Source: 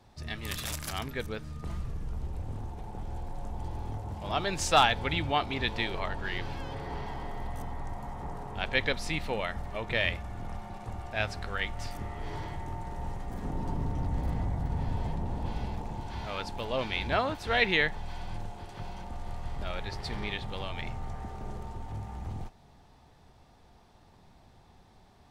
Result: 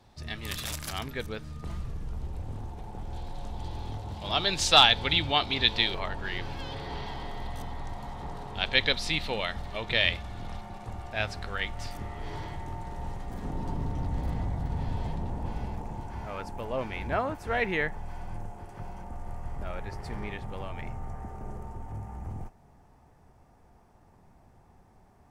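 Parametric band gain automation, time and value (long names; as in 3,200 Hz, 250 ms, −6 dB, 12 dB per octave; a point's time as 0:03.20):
parametric band 3,800 Hz 0.96 octaves
+2 dB
from 0:03.13 +12 dB
from 0:05.94 +2 dB
from 0:06.59 +10.5 dB
from 0:10.61 +2 dB
from 0:15.30 −7 dB
from 0:16.06 −15 dB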